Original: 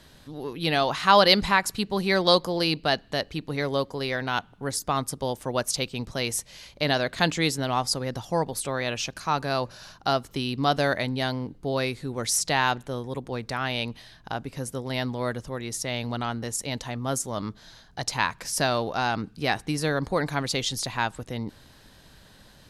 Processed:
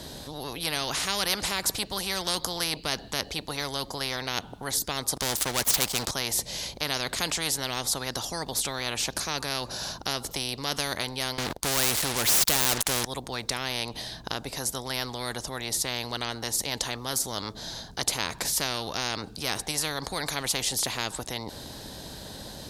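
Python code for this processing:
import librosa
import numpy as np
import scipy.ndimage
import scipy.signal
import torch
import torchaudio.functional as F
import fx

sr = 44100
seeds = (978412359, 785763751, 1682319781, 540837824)

y = fx.leveller(x, sr, passes=3, at=(5.16, 6.11))
y = fx.leveller(y, sr, passes=5, at=(11.38, 13.05))
y = scipy.signal.sosfilt(scipy.signal.butter(2, 41.0, 'highpass', fs=sr, output='sos'), y)
y = fx.band_shelf(y, sr, hz=1800.0, db=-8.0, octaves=1.7)
y = fx.spectral_comp(y, sr, ratio=4.0)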